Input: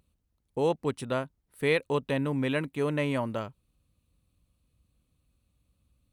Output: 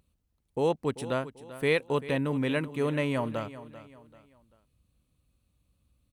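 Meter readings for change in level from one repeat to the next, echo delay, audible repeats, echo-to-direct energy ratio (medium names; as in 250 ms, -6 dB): -9.0 dB, 390 ms, 3, -14.5 dB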